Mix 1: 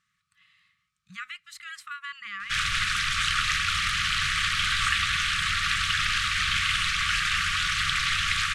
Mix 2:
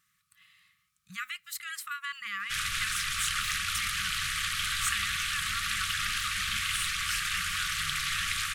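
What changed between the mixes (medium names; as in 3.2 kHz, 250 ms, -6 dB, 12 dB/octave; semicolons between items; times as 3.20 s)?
background -7.5 dB; master: remove distance through air 78 m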